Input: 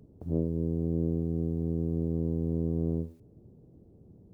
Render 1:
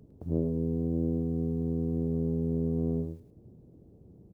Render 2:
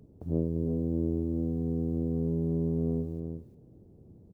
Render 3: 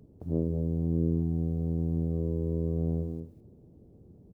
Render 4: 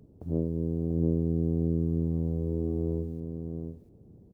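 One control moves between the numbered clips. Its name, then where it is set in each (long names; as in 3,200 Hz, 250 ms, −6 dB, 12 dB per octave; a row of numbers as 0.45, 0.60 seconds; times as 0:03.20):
single-tap delay, delay time: 105, 348, 205, 691 milliseconds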